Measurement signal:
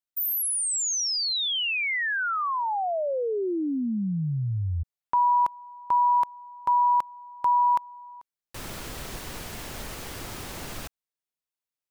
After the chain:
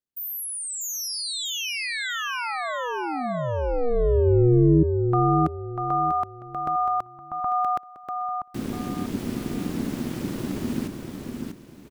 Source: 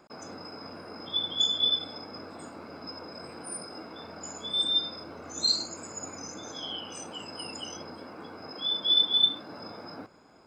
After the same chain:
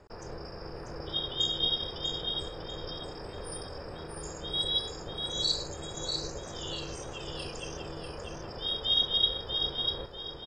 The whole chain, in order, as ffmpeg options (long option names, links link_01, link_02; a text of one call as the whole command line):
ffmpeg -i in.wav -af "bass=frequency=250:gain=14,treble=frequency=4000:gain=-2,aecho=1:1:643|1286|1929|2572:0.562|0.169|0.0506|0.0152,aeval=exprs='val(0)*sin(2*PI*240*n/s)':channel_layout=same" out.wav